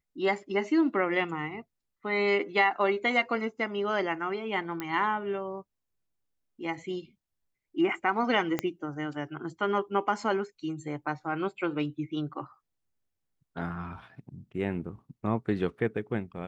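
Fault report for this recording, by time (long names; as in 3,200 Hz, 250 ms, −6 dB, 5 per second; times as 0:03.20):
0:04.80: click −19 dBFS
0:08.59: click −14 dBFS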